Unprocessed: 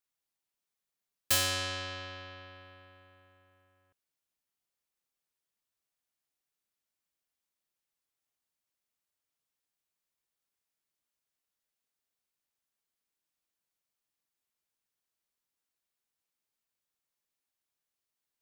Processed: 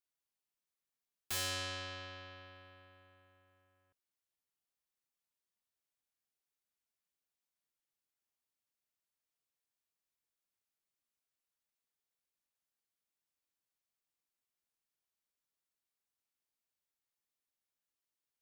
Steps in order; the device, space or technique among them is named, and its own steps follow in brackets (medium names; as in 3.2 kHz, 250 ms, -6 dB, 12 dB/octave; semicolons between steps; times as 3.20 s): saturation between pre-emphasis and de-emphasis (treble shelf 5.9 kHz +10 dB; saturation -22.5 dBFS, distortion -7 dB; treble shelf 5.9 kHz -10 dB); trim -5 dB